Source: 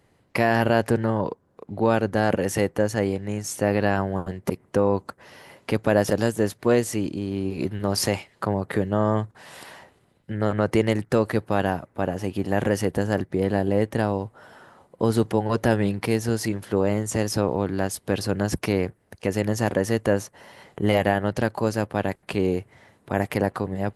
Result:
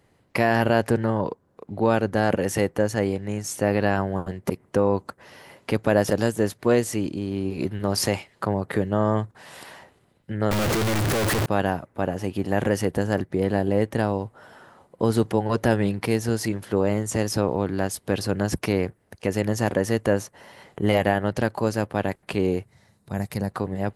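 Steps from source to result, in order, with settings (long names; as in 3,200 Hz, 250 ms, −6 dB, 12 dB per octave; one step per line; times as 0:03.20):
0:10.51–0:11.46: sign of each sample alone
0:22.65–0:23.55: gain on a spectral selection 230–3,600 Hz −9 dB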